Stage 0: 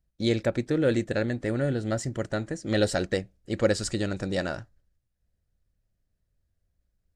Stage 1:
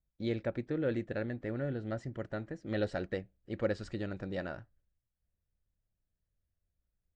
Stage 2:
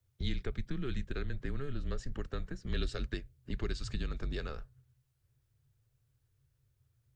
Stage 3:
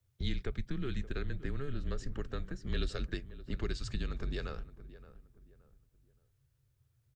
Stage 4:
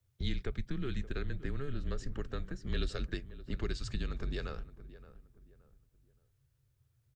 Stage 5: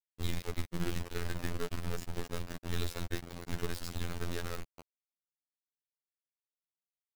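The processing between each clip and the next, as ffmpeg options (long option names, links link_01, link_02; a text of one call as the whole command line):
ffmpeg -i in.wav -af "lowpass=2800,volume=-9dB" out.wav
ffmpeg -i in.wav -filter_complex "[0:a]acrossover=split=160|3000[link_01][link_02][link_03];[link_02]acompressor=threshold=-49dB:ratio=5[link_04];[link_01][link_04][link_03]amix=inputs=3:normalize=0,afreqshift=-140,volume=9dB" out.wav
ffmpeg -i in.wav -filter_complex "[0:a]asplit=2[link_01][link_02];[link_02]adelay=572,lowpass=frequency=1400:poles=1,volume=-15dB,asplit=2[link_03][link_04];[link_04]adelay=572,lowpass=frequency=1400:poles=1,volume=0.34,asplit=2[link_05][link_06];[link_06]adelay=572,lowpass=frequency=1400:poles=1,volume=0.34[link_07];[link_01][link_03][link_05][link_07]amix=inputs=4:normalize=0" out.wav
ffmpeg -i in.wav -af anull out.wav
ffmpeg -i in.wav -af "acrusher=bits=4:dc=4:mix=0:aa=0.000001,afftfilt=real='hypot(re,im)*cos(PI*b)':imag='0':win_size=2048:overlap=0.75,volume=6dB" out.wav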